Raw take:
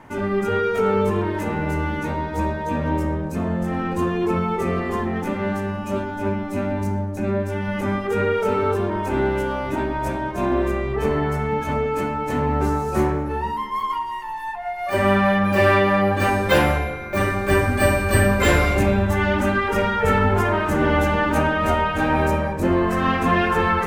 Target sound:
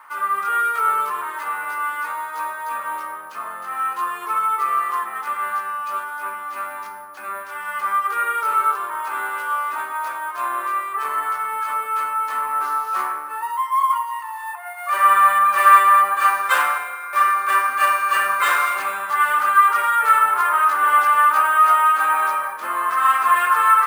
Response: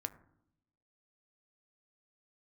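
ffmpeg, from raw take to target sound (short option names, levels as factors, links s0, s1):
-af "acrusher=samples=4:mix=1:aa=0.000001,highpass=f=1200:t=q:w=6.9,volume=0.708"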